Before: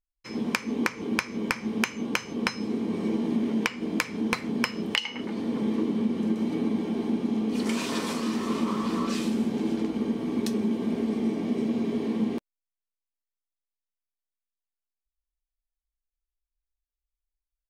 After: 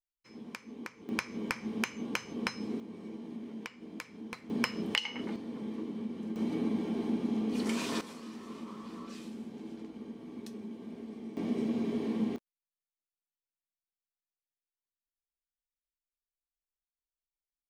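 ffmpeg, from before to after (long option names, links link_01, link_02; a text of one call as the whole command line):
ffmpeg -i in.wav -af "asetnsamples=nb_out_samples=441:pad=0,asendcmd='1.09 volume volume -7dB;2.8 volume volume -16.5dB;4.5 volume volume -4.5dB;5.36 volume volume -12dB;6.36 volume volume -5dB;8.01 volume volume -16.5dB;11.37 volume volume -5dB;12.36 volume volume -17.5dB',volume=-17dB" out.wav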